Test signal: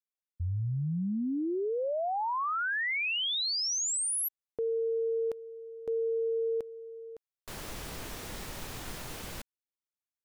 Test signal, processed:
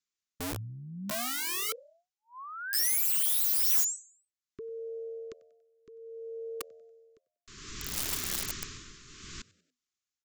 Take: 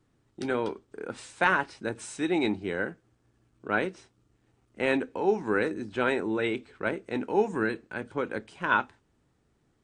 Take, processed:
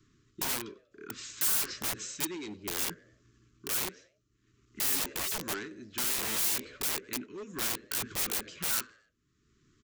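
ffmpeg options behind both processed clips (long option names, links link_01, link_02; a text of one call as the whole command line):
ffmpeg -i in.wav -filter_complex "[0:a]asuperstop=centerf=670:order=20:qfactor=1.1,aresample=16000,asoftclip=type=hard:threshold=-26dB,aresample=44100,tremolo=f=0.61:d=0.84,asplit=2[link_01][link_02];[link_02]asplit=3[link_03][link_04][link_05];[link_03]adelay=95,afreqshift=81,volume=-22.5dB[link_06];[link_04]adelay=190,afreqshift=162,volume=-29.8dB[link_07];[link_05]adelay=285,afreqshift=243,volume=-37.2dB[link_08];[link_06][link_07][link_08]amix=inputs=3:normalize=0[link_09];[link_01][link_09]amix=inputs=2:normalize=0,aeval=exprs='(mod(66.8*val(0)+1,2)-1)/66.8':channel_layout=same,crystalizer=i=2:c=0,volume=3.5dB" out.wav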